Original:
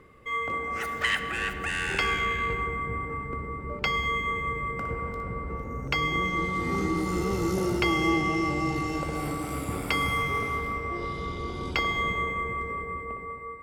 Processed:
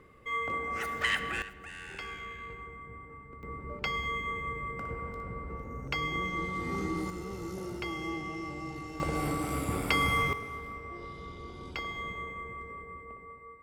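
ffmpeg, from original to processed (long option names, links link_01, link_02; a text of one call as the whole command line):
ffmpeg -i in.wav -af "asetnsamples=nb_out_samples=441:pad=0,asendcmd='1.42 volume volume -15dB;3.43 volume volume -6dB;7.1 volume volume -12dB;9 volume volume -0.5dB;10.33 volume volume -10.5dB',volume=-3dB" out.wav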